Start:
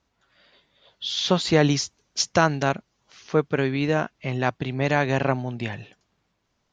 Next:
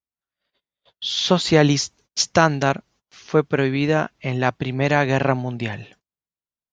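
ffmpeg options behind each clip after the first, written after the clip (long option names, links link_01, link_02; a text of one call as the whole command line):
ffmpeg -i in.wav -af "agate=range=-32dB:threshold=-54dB:ratio=16:detection=peak,volume=3.5dB" out.wav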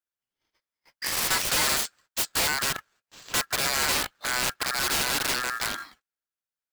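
ffmpeg -i in.wav -af "aeval=exprs='val(0)*sin(2*PI*1500*n/s)':channel_layout=same,acrusher=bits=2:mode=log:mix=0:aa=0.000001,aeval=exprs='(mod(8.41*val(0)+1,2)-1)/8.41':channel_layout=same" out.wav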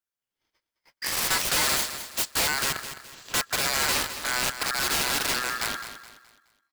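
ffmpeg -i in.wav -af "aecho=1:1:211|422|633|844:0.282|0.101|0.0365|0.0131" out.wav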